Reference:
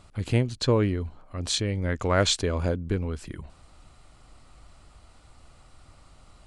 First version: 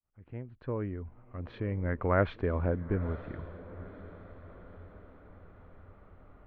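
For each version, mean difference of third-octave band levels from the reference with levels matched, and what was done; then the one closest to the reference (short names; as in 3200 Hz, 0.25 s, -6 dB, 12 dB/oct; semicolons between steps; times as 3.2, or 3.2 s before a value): 8.5 dB: opening faded in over 2.08 s; inverse Chebyshev low-pass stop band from 7900 Hz, stop band 70 dB; diffused feedback echo 0.966 s, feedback 50%, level -16 dB; gain -3.5 dB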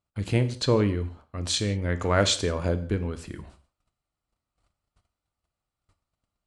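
6.5 dB: HPF 59 Hz 6 dB/oct; gate -50 dBFS, range -31 dB; non-linear reverb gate 0.2 s falling, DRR 9.5 dB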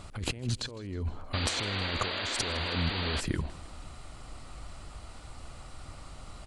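12.0 dB: negative-ratio compressor -35 dBFS, ratio -1; painted sound noise, 1.33–3.21, 220–4800 Hz -35 dBFS; on a send: feedback echo 0.158 s, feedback 50%, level -20 dB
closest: second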